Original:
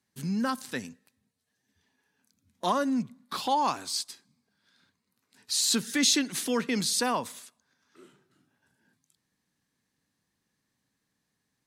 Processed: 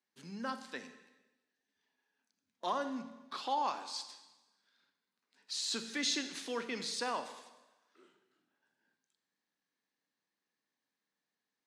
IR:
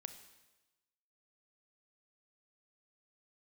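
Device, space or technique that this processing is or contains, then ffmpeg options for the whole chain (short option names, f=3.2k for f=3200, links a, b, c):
supermarket ceiling speaker: -filter_complex "[0:a]highpass=340,lowpass=5.5k[a];[1:a]atrim=start_sample=2205[b];[a][b]afir=irnorm=-1:irlink=0,volume=-3dB"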